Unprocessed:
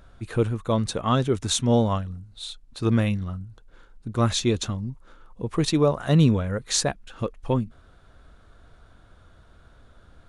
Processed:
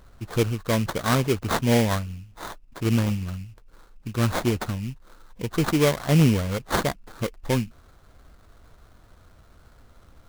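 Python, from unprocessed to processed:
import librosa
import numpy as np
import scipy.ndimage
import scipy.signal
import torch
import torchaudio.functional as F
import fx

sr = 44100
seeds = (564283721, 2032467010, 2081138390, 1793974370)

y = fx.dynamic_eq(x, sr, hz=730.0, q=0.94, threshold_db=-39.0, ratio=4.0, max_db=-6, at=(2.03, 4.62), fade=0.02)
y = fx.sample_hold(y, sr, seeds[0], rate_hz=2700.0, jitter_pct=20)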